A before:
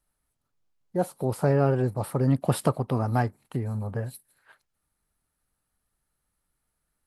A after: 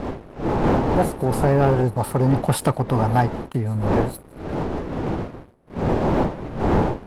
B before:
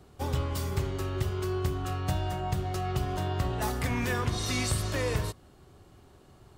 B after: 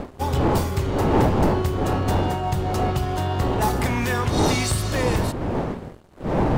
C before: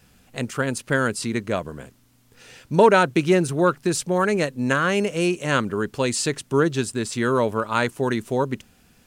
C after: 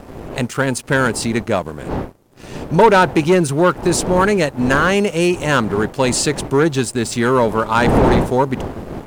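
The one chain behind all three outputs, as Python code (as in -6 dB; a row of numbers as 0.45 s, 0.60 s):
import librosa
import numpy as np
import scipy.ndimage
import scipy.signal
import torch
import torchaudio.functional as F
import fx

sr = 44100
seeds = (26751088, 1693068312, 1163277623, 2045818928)

y = fx.dmg_wind(x, sr, seeds[0], corner_hz=420.0, level_db=-30.0)
y = fx.leveller(y, sr, passes=2)
y = fx.dynamic_eq(y, sr, hz=860.0, q=3.9, threshold_db=-37.0, ratio=4.0, max_db=6)
y = F.gain(torch.from_numpy(y), -1.0).numpy()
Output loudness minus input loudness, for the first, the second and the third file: +5.0 LU, +8.5 LU, +6.0 LU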